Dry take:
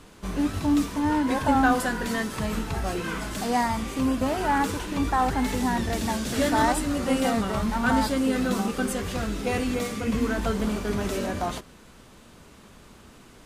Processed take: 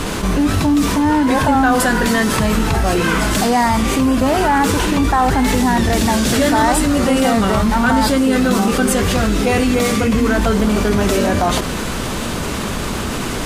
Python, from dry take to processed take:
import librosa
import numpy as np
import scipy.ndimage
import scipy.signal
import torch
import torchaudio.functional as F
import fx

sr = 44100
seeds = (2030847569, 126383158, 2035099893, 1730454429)

y = fx.env_flatten(x, sr, amount_pct=70)
y = y * 10.0 ** (5.5 / 20.0)